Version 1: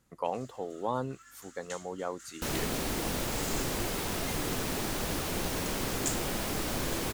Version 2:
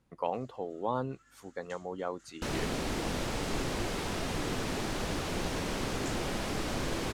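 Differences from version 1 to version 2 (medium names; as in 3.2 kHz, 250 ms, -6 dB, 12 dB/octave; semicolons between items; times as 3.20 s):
first sound -9.0 dB; master: add distance through air 56 m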